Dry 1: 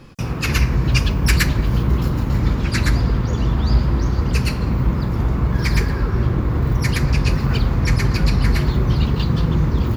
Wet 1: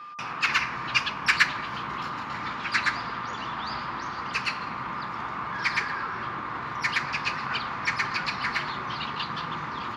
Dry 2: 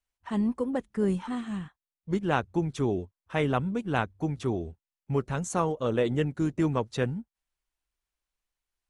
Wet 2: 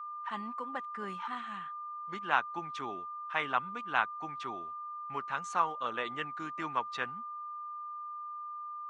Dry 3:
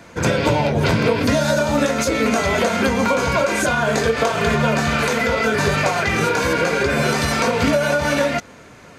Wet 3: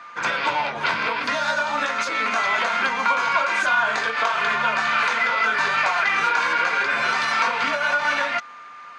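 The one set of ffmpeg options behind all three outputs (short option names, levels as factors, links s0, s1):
-af "highpass=250,lowpass=3900,aeval=exprs='val(0)+0.00794*sin(2*PI*1200*n/s)':c=same,lowshelf=f=700:t=q:w=1.5:g=-13"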